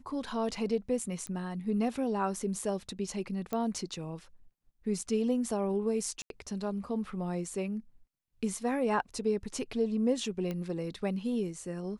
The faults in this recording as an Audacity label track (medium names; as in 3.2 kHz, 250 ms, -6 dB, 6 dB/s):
1.270000	1.270000	pop -24 dBFS
3.530000	3.530000	pop -20 dBFS
6.220000	6.300000	dropout 82 ms
10.510000	10.510000	pop -23 dBFS